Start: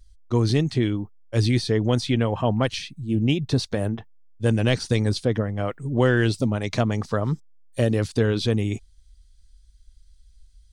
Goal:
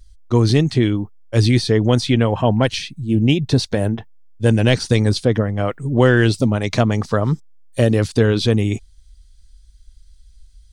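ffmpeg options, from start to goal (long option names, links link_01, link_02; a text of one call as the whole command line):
ffmpeg -i in.wav -filter_complex "[0:a]asettb=1/sr,asplit=3[link_01][link_02][link_03];[link_01]atrim=end=2.374[link_04];[link_02]atrim=start=2.37:end=4.74,asetpts=PTS-STARTPTS,afade=type=in:duration=0.004:curve=qsin,afade=type=out:start_time=2.366:duration=0.004:curve=qsin,bandreject=frequency=1200:width=8.6[link_05];[link_03]atrim=start=4.736[link_06];[link_04][link_05]acrossfade=duration=0.004:curve1=hsin:curve2=qsin[link_07];[link_07][link_06]acrossfade=duration=0.004:curve1=qsin:curve2=hsin,volume=6dB" out.wav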